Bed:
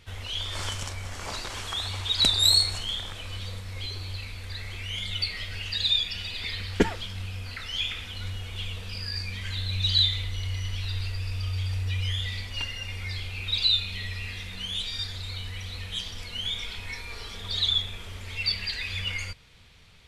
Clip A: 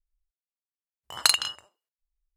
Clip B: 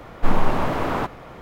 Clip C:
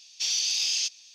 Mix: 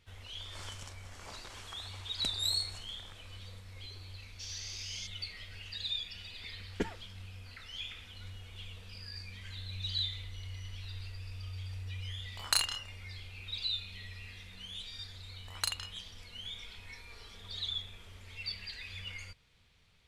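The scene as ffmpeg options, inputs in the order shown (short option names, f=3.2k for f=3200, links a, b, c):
-filter_complex "[1:a]asplit=2[a][b];[0:a]volume=-12.5dB[c];[a]asplit=2[d][e];[e]adelay=28,volume=-4dB[f];[d][f]amix=inputs=2:normalize=0[g];[3:a]atrim=end=1.14,asetpts=PTS-STARTPTS,volume=-17dB,afade=t=in:d=0.004:c=hsin,afade=t=out:st=1.136:d=0.004:c=hsin,adelay=4190[h];[g]atrim=end=2.36,asetpts=PTS-STARTPTS,volume=-9dB,afade=t=in:d=0.004:c=hsin,afade=t=out:st=2.356:d=0.004:c=hsin,adelay=11270[i];[b]atrim=end=2.36,asetpts=PTS-STARTPTS,volume=-13.5dB,afade=t=in:d=0.004:c=hsin,afade=t=out:st=2.356:d=0.004:c=hsin,adelay=14380[j];[c][h][i][j]amix=inputs=4:normalize=0"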